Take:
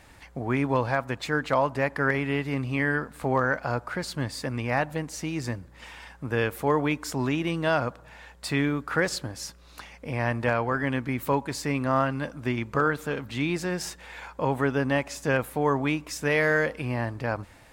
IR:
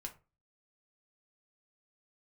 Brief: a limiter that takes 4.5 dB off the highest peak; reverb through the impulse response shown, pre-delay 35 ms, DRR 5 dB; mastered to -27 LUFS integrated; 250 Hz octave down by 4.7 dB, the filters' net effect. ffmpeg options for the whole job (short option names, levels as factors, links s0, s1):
-filter_complex "[0:a]equalizer=f=250:t=o:g=-6,alimiter=limit=0.158:level=0:latency=1,asplit=2[s0][s1];[1:a]atrim=start_sample=2205,adelay=35[s2];[s1][s2]afir=irnorm=-1:irlink=0,volume=0.841[s3];[s0][s3]amix=inputs=2:normalize=0,volume=1.19"